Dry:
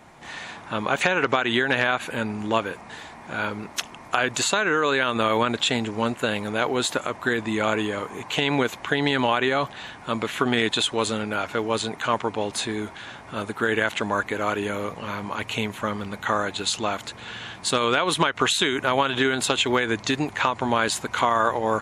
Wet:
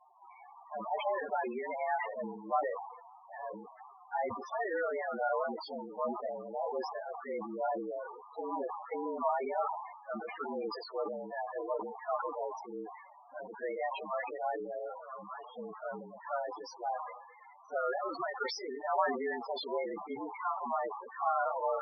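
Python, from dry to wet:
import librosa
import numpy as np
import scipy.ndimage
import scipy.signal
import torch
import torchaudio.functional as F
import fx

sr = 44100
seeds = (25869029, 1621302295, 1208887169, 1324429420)

y = fx.partial_stretch(x, sr, pct=111)
y = fx.bandpass_q(y, sr, hz=820.0, q=1.5)
y = fx.spec_topn(y, sr, count=8)
y = fx.sustainer(y, sr, db_per_s=60.0)
y = F.gain(torch.from_numpy(y), -2.5).numpy()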